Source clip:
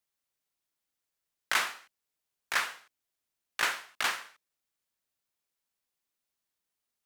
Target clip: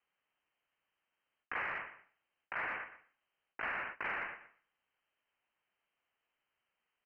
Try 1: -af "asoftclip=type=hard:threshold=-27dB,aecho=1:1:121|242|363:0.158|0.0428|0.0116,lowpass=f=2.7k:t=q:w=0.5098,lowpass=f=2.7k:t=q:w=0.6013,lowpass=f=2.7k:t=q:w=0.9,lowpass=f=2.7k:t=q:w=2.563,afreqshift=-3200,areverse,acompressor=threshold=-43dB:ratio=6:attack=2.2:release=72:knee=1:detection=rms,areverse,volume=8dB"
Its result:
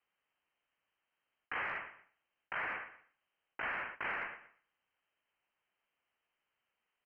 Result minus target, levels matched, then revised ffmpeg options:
hard clip: distortion +14 dB
-af "asoftclip=type=hard:threshold=-17.5dB,aecho=1:1:121|242|363:0.158|0.0428|0.0116,lowpass=f=2.7k:t=q:w=0.5098,lowpass=f=2.7k:t=q:w=0.6013,lowpass=f=2.7k:t=q:w=0.9,lowpass=f=2.7k:t=q:w=2.563,afreqshift=-3200,areverse,acompressor=threshold=-43dB:ratio=6:attack=2.2:release=72:knee=1:detection=rms,areverse,volume=8dB"

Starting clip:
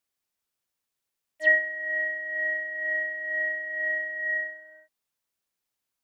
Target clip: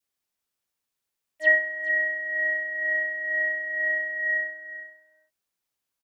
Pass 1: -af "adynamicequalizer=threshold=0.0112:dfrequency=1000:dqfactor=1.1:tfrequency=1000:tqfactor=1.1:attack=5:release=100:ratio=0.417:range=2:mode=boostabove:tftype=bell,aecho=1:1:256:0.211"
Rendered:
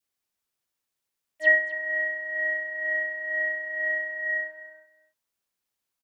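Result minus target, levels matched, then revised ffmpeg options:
echo 0.171 s early
-af "adynamicequalizer=threshold=0.0112:dfrequency=1000:dqfactor=1.1:tfrequency=1000:tqfactor=1.1:attack=5:release=100:ratio=0.417:range=2:mode=boostabove:tftype=bell,aecho=1:1:427:0.211"

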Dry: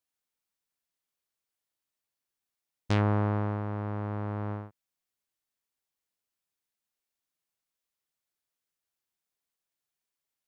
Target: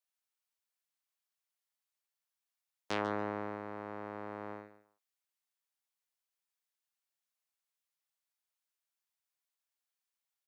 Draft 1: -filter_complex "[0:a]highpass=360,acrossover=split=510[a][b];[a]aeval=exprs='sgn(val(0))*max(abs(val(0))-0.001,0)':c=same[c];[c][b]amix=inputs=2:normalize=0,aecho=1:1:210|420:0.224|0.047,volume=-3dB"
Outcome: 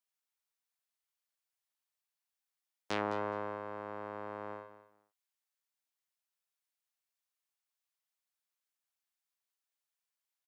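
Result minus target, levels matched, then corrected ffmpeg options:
echo 66 ms late
-filter_complex "[0:a]highpass=360,acrossover=split=510[a][b];[a]aeval=exprs='sgn(val(0))*max(abs(val(0))-0.001,0)':c=same[c];[c][b]amix=inputs=2:normalize=0,aecho=1:1:144|288:0.224|0.047,volume=-3dB"

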